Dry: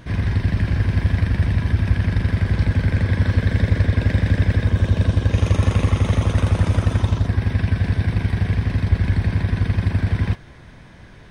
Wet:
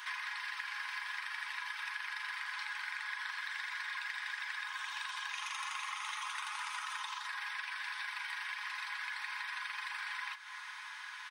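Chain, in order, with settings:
Butterworth high-pass 900 Hz 72 dB per octave
comb filter 4.8 ms, depth 46%
downward compressor 6 to 1, threshold −43 dBFS, peak gain reduction 14.5 dB
level +4.5 dB

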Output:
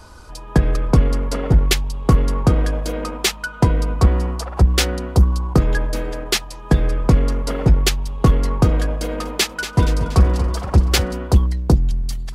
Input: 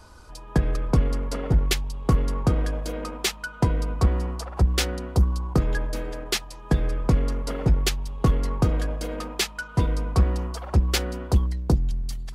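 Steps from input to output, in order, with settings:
0:09.02–0:11.13: feedback echo with a swinging delay time 236 ms, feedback 53%, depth 73 cents, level −11 dB
level +6.5 dB

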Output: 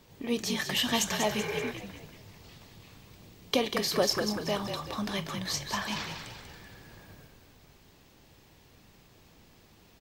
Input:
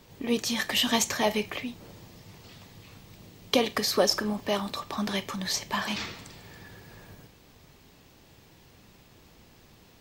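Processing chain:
echo with shifted repeats 191 ms, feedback 46%, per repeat −46 Hz, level −7 dB
healed spectral selection 0:01.40–0:01.68, 330–2,500 Hz before
level −3.5 dB

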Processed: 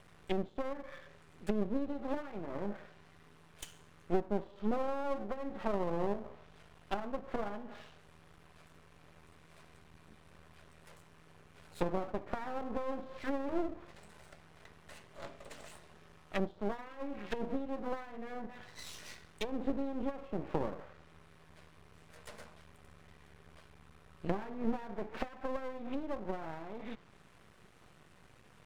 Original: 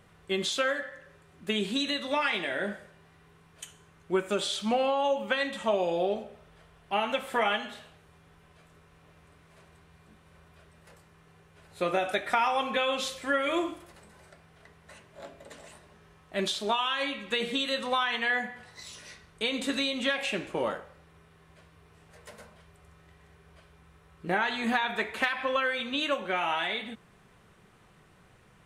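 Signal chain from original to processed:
treble cut that deepens with the level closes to 410 Hz, closed at −27.5 dBFS
half-wave rectification
level +2 dB

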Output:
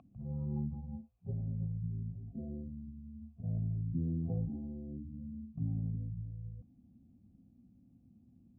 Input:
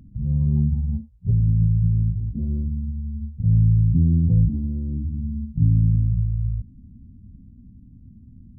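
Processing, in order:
formant filter a
level +12 dB

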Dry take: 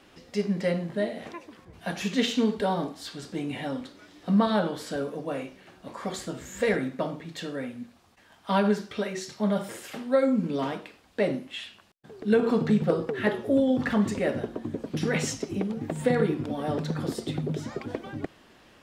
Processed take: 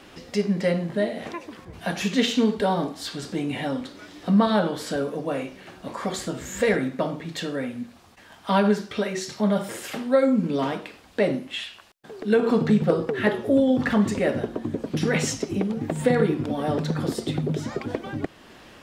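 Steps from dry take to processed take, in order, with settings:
in parallel at −1 dB: downward compressor, threshold −40 dBFS, peak gain reduction 21 dB
0:11.63–0:12.48: on the sum: parametric band 210 Hz → 61 Hz −11 dB 2 octaves
level +2.5 dB

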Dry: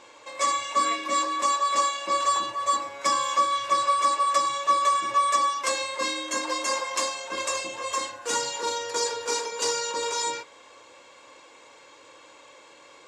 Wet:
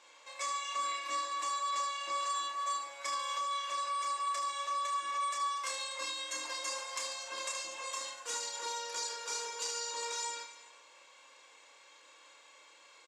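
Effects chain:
high-pass filter 1,400 Hz 6 dB per octave
downward compressor, threshold −29 dBFS, peak gain reduction 8 dB
on a send: reverse bouncing-ball delay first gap 30 ms, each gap 1.5×, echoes 5
on the sum: level −7 dB

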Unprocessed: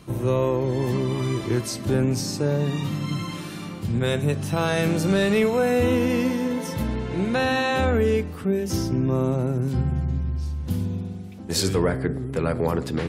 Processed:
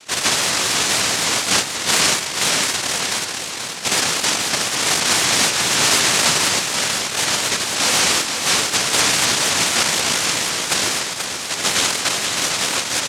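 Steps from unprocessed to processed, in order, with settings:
Butterworth low-pass 560 Hz 96 dB per octave
low-shelf EQ 140 Hz +12 dB
comb filter 3.1 ms, depth 47%
cochlear-implant simulation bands 1
single-tap delay 482 ms −6.5 dB
pitch modulation by a square or saw wave saw up 4 Hz, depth 100 cents
level +1.5 dB

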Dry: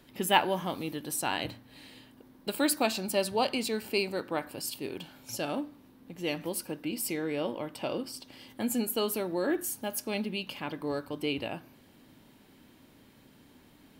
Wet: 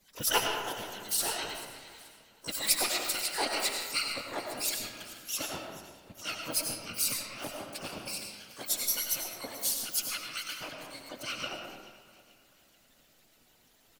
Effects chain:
harmonic-percussive split with one part muted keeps percussive
tilt shelving filter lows −5 dB, about 1,500 Hz
notch filter 1,600 Hz, Q 19
comb filter 5.3 ms, depth 90%
hum removal 81.02 Hz, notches 4
dynamic equaliser 670 Hz, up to −4 dB, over −54 dBFS, Q 6.2
random phases in short frames
in parallel at −7 dB: asymmetric clip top −30 dBFS
on the sum: phaser with its sweep stopped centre 390 Hz, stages 6
pitch-shifted copies added −12 semitones −4 dB, +12 semitones −7 dB
delay that swaps between a low-pass and a high-pass 217 ms, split 2,000 Hz, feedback 60%, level −13 dB
comb and all-pass reverb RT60 1.3 s, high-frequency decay 0.6×, pre-delay 55 ms, DRR 2 dB
level −6 dB

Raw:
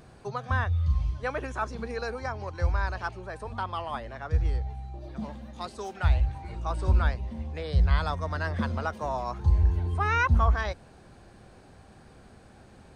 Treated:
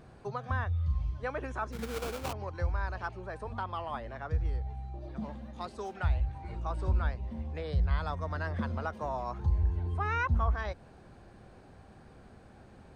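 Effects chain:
high-shelf EQ 3,400 Hz −8 dB
in parallel at +1 dB: downward compressor, threshold −32 dBFS, peak gain reduction 15 dB
0:01.72–0:02.33: on the sum: sample-rate reduction 1,900 Hz, jitter 20%
level −8 dB

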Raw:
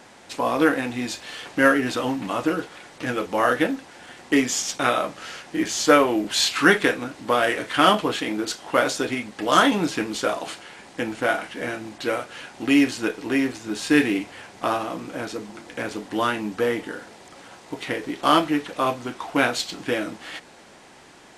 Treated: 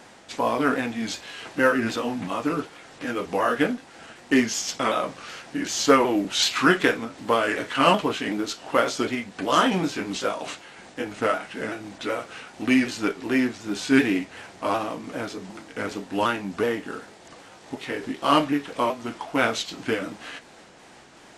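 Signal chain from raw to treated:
pitch shifter swept by a sawtooth −2 semitones, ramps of 378 ms
dynamic equaliser 9,500 Hz, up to −7 dB, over −58 dBFS, Q 5.3

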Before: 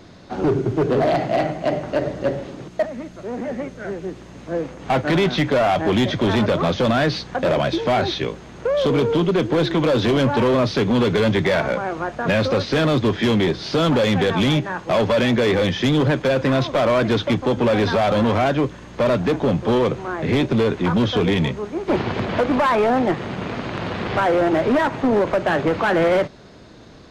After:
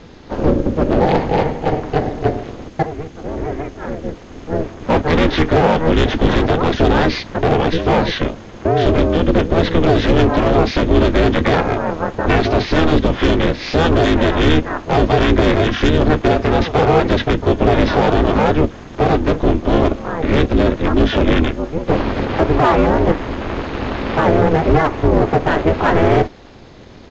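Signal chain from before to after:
pitch-shifted copies added −12 semitones 0 dB, −4 semitones −5 dB
downsampling to 16,000 Hz
ring modulation 160 Hz
level +4 dB

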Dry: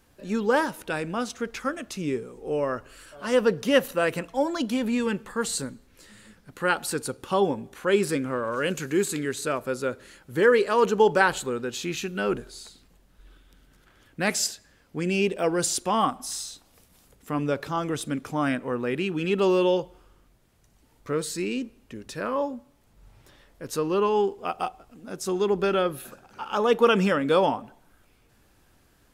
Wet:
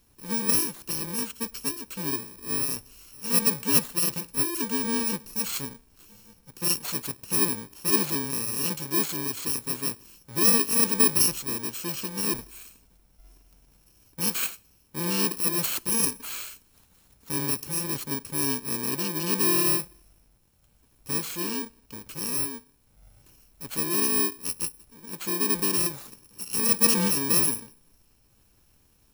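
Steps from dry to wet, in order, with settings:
samples in bit-reversed order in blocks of 64 samples
level −1.5 dB

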